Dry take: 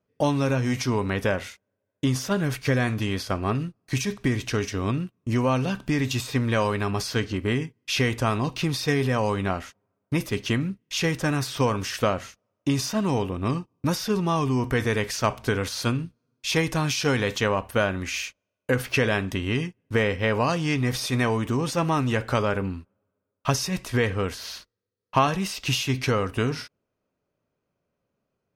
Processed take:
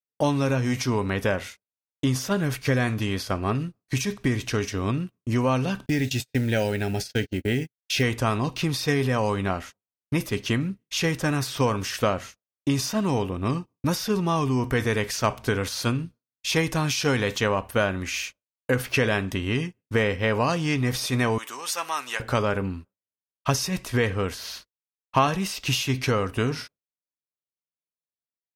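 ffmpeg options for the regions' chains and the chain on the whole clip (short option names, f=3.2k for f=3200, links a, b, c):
-filter_complex "[0:a]asettb=1/sr,asplit=3[a][b][c];[a]atrim=end=5.864[d];[b]atrim=start=5.86:end=8.03,asetpts=PTS-STARTPTS,afade=t=in:d=0.004:c=qsin,afade=t=out:st=2.166:d=0.004:c=qsin,agate=range=-41dB:threshold=-31dB:ratio=16:release=100:detection=peak,acrusher=bits=7:mode=log:mix=0:aa=0.000001,asuperstop=centerf=1100:order=4:qfactor=1.9[e];[c]atrim=start=8.026[f];[d][e]acrossfade=d=0.004:c1=hsin:c2=qsin[g];[g][f]acrossfade=d=0.004:c1=qsin:c2=hsin,asettb=1/sr,asplit=3[h][i][j];[h]atrim=end=21.384[k];[i]atrim=start=21.38:end=22.2,asetpts=PTS-STARTPTS,afade=t=in:d=0.004:c=qsin,afade=t=out:st=0.816:d=0.004:c=qsin,highpass=960,highshelf=f=5.9k:g=8[l];[j]atrim=start=22.196[m];[k][l]acrossfade=d=0.004:c1=hsin:c2=qsin[n];[n][m]acrossfade=d=0.004:c1=qsin:c2=hsin,agate=range=-33dB:threshold=-38dB:ratio=3:detection=peak,highshelf=f=11k:g=4"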